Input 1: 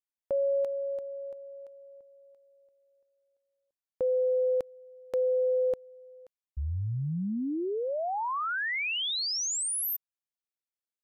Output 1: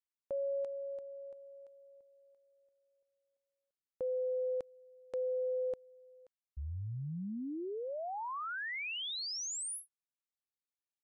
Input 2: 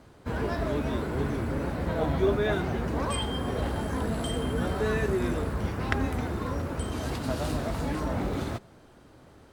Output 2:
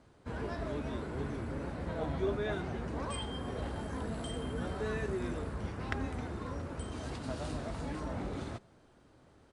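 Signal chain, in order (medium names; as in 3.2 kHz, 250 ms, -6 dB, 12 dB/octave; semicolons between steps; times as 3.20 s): resampled via 22.05 kHz; trim -8.5 dB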